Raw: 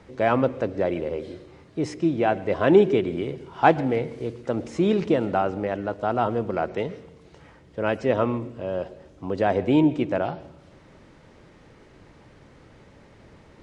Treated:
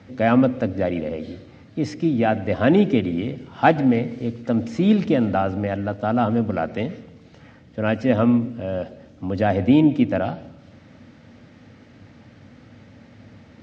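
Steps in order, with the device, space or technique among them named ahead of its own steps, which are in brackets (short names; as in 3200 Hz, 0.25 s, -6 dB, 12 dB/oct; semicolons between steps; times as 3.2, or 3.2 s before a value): car door speaker (speaker cabinet 85–6500 Hz, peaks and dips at 100 Hz +9 dB, 240 Hz +10 dB, 390 Hz -10 dB, 1000 Hz -8 dB); gain +3 dB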